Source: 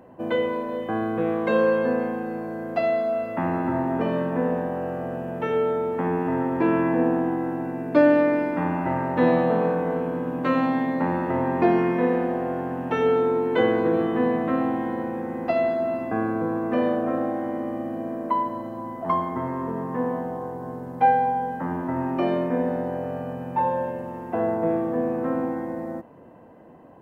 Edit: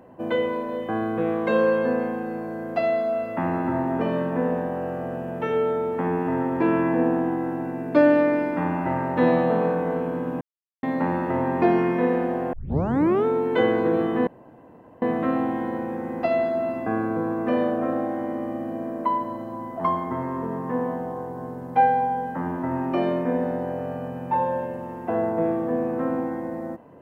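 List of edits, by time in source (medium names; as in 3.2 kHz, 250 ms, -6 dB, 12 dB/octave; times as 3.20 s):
10.41–10.83 s: mute
12.53 s: tape start 0.72 s
14.27 s: insert room tone 0.75 s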